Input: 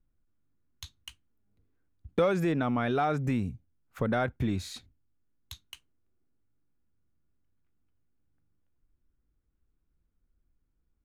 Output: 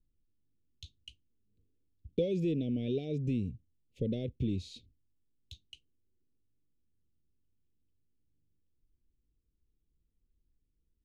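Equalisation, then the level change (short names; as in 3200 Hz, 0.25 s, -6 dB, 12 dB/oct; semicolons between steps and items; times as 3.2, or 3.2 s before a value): elliptic band-stop 480–2800 Hz, stop band 50 dB; Bessel low-pass 3900 Hz, order 2; -2.5 dB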